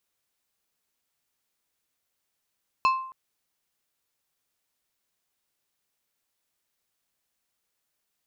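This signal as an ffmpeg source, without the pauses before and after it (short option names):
-f lavfi -i "aevalsrc='0.158*pow(10,-3*t/0.61)*sin(2*PI*1050*t)+0.0668*pow(10,-3*t/0.321)*sin(2*PI*2625*t)+0.0282*pow(10,-3*t/0.231)*sin(2*PI*4200*t)+0.0119*pow(10,-3*t/0.198)*sin(2*PI*5250*t)+0.00501*pow(10,-3*t/0.165)*sin(2*PI*6825*t)':d=0.27:s=44100"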